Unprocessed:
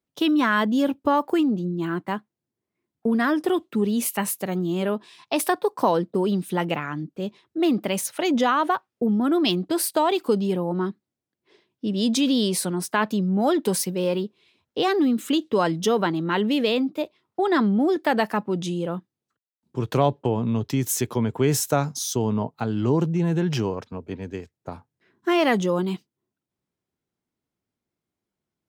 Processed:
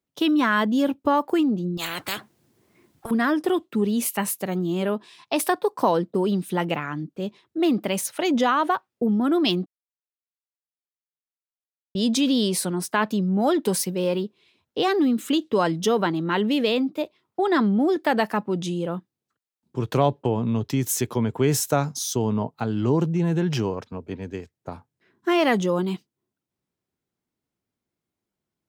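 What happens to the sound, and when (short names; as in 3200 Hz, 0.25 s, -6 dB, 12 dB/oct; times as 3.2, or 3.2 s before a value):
1.77–3.11 spectral compressor 10:1
9.66–11.95 mute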